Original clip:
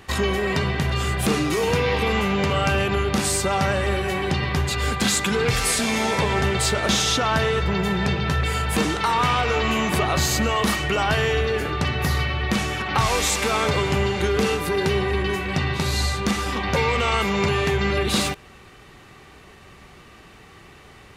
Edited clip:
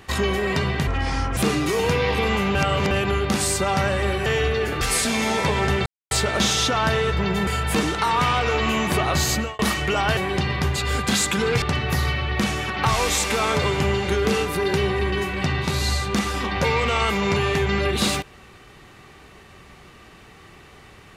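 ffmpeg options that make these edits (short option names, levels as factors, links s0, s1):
-filter_complex "[0:a]asplit=12[s0][s1][s2][s3][s4][s5][s6][s7][s8][s9][s10][s11];[s0]atrim=end=0.874[s12];[s1]atrim=start=0.87:end=1.21,asetpts=PTS-STARTPTS,asetrate=29988,aresample=44100[s13];[s2]atrim=start=1.206:end=2.392[s14];[s3]atrim=start=2.388:end=2.752,asetpts=PTS-STARTPTS,areverse[s15];[s4]atrim=start=2.748:end=4.102[s16];[s5]atrim=start=11.188:end=11.742[s17];[s6]atrim=start=5.548:end=6.6,asetpts=PTS-STARTPTS,afade=t=out:st=1.048:d=0.004:c=hsin,apad=pad_dur=0.25[s18];[s7]atrim=start=6.6:end=7.962,asetpts=PTS-STARTPTS,afade=t=in:d=0.004:c=hsin[s19];[s8]atrim=start=8.488:end=10.61,asetpts=PTS-STARTPTS,afade=t=out:st=1.862:d=0.26[s20];[s9]atrim=start=10.61:end=11.192,asetpts=PTS-STARTPTS,afade=t=in:d=0.004:c=hsin[s21];[s10]atrim=start=4.098:end=5.552[s22];[s11]atrim=start=11.738[s23];[s12][s13]acrossfade=d=0.004:c1=hsin:c2=hsin[s24];[s24][s14]acrossfade=d=0.004:c1=hsin:c2=hsin[s25];[s25][s15]acrossfade=d=0.004:c1=hsin:c2=hsin[s26];[s26][s16]acrossfade=d=0.004:c1=hsin:c2=hsin[s27];[s27][s17]acrossfade=d=0.004:c1=hsin:c2=hsin[s28];[s18][s19]concat=n=2:v=0:a=1[s29];[s28][s29]acrossfade=d=0.004:c1=hsin:c2=hsin[s30];[s20][s21]concat=n=2:v=0:a=1[s31];[s30][s31]acrossfade=d=0.004:c1=hsin:c2=hsin[s32];[s32][s22]acrossfade=d=0.004:c1=hsin:c2=hsin[s33];[s33][s23]acrossfade=d=0.004:c1=hsin:c2=hsin"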